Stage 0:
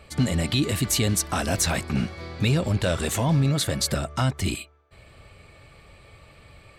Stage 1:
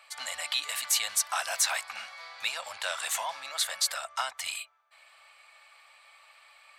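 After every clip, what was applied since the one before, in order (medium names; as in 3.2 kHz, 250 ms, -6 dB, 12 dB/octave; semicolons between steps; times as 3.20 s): inverse Chebyshev high-pass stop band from 390 Hz, stop band 40 dB; trim -1.5 dB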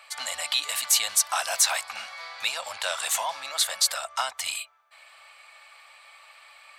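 dynamic bell 1.8 kHz, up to -4 dB, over -43 dBFS, Q 1.2; trim +5.5 dB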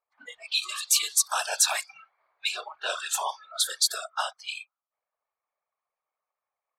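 whisper effect; level-controlled noise filter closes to 640 Hz, open at -22 dBFS; spectral noise reduction 26 dB; trim -1 dB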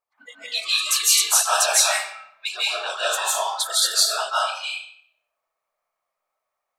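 reverberation RT60 0.65 s, pre-delay 120 ms, DRR -7 dB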